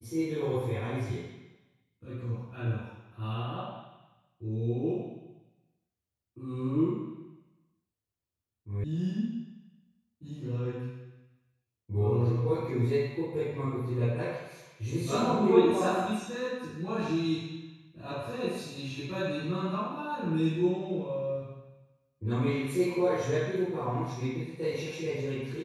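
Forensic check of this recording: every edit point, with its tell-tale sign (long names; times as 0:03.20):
0:08.84: cut off before it has died away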